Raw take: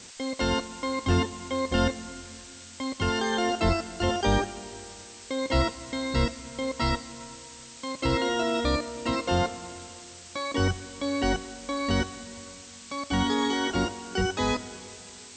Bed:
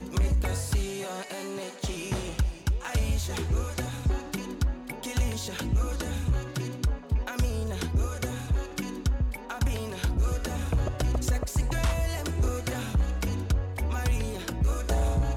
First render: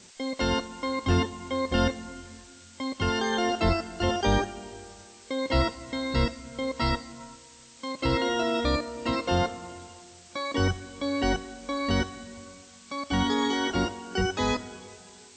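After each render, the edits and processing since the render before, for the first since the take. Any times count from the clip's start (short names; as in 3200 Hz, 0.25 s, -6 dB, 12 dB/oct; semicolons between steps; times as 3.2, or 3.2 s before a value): noise print and reduce 6 dB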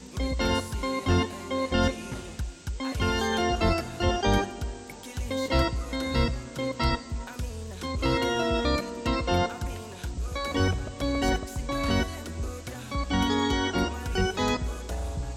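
add bed -7 dB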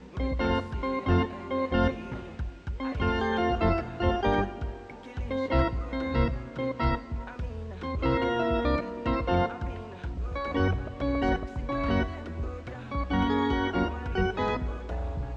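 LPF 2200 Hz 12 dB/oct; notches 50/100/150/200/250 Hz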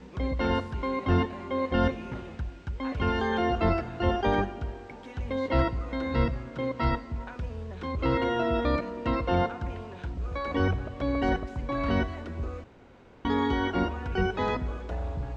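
12.64–13.25 room tone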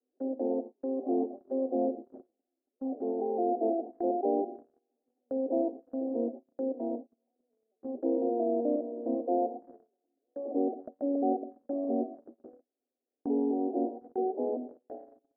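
Chebyshev band-pass 240–770 Hz, order 5; gate -39 dBFS, range -35 dB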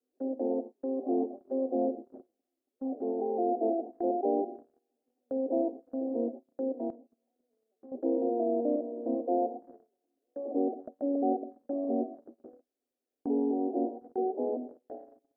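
6.9–7.92 compressor 5:1, threshold -48 dBFS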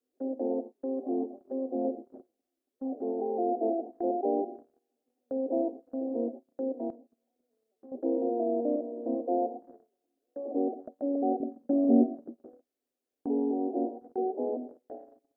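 0.98–1.85 dynamic EQ 630 Hz, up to -4 dB, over -39 dBFS, Q 0.87; 11.4–12.37 bell 200 Hz +12.5 dB 1.7 oct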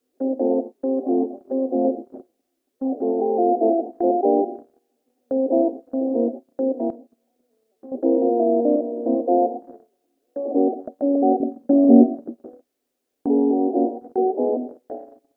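gain +10.5 dB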